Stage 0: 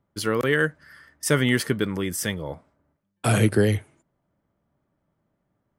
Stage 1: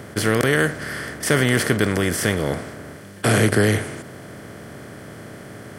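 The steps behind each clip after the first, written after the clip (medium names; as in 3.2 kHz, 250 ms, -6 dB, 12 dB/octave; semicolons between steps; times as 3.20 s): spectral levelling over time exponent 0.4; trim -1 dB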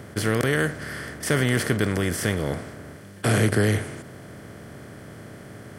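bass shelf 140 Hz +5.5 dB; trim -5 dB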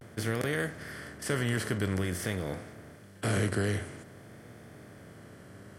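flange 0.67 Hz, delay 8.4 ms, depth 3.3 ms, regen +78%; vibrato 0.49 Hz 62 cents; trim -4 dB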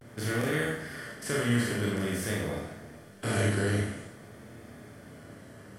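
Schroeder reverb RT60 0.63 s, combs from 26 ms, DRR -3.5 dB; trim -3 dB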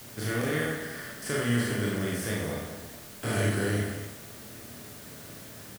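word length cut 8-bit, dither triangular; delay 218 ms -12 dB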